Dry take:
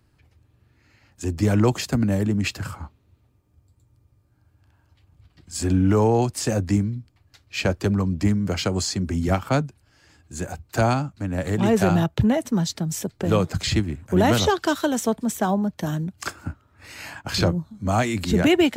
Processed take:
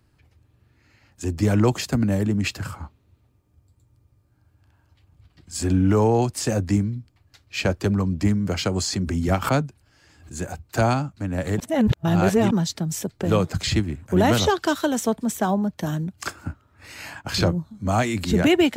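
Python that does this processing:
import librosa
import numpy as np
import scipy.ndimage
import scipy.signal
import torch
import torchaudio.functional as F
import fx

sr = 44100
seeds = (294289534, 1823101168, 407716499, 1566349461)

y = fx.pre_swell(x, sr, db_per_s=110.0, at=(8.81, 10.36))
y = fx.edit(y, sr, fx.reverse_span(start_s=11.6, length_s=0.91), tone=tone)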